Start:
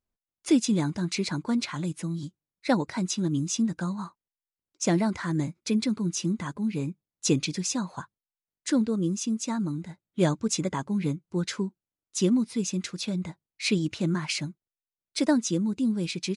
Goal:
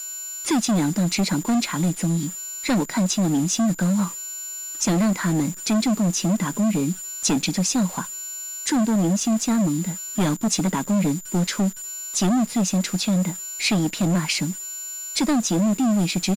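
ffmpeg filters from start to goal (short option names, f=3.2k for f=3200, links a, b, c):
-filter_complex "[0:a]aeval=exprs='val(0)+0.00891*sin(2*PI*7100*n/s)':c=same,asplit=2[a][b];[b]acompressor=threshold=-34dB:ratio=12,volume=1dB[c];[a][c]amix=inputs=2:normalize=0,lowshelf=f=130:t=q:w=3:g=-13.5,acrossover=split=2100[d][e];[d]volume=20.5dB,asoftclip=hard,volume=-20.5dB[f];[f][e]amix=inputs=2:normalize=0,acrusher=bits=7:dc=4:mix=0:aa=0.000001,aresample=32000,aresample=44100,volume=3dB"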